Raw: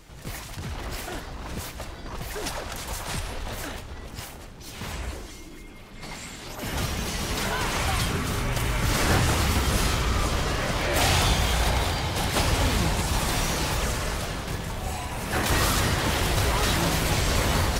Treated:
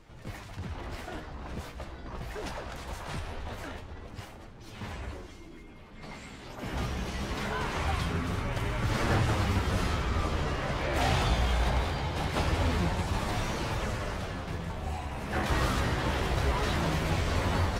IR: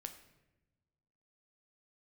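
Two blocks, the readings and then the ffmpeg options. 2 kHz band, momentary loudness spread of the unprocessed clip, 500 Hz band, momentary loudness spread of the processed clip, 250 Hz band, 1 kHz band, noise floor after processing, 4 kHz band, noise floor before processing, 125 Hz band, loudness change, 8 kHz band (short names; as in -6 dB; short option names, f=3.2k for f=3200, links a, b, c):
-6.5 dB, 15 LU, -4.0 dB, 16 LU, -4.0 dB, -4.5 dB, -47 dBFS, -9.5 dB, -42 dBFS, -3.5 dB, -5.5 dB, -14.5 dB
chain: -af "lowpass=f=2.2k:p=1,flanger=delay=8.6:depth=7.9:regen=46:speed=0.22:shape=triangular"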